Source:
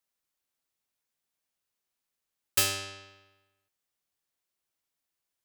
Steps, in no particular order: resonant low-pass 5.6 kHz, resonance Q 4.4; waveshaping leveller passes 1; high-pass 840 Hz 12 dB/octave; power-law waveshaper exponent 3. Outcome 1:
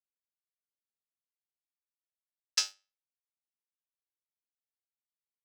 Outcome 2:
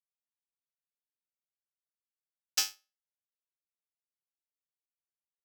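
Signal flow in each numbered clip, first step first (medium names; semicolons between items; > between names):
power-law waveshaper > resonant low-pass > waveshaping leveller > high-pass; resonant low-pass > power-law waveshaper > high-pass > waveshaping leveller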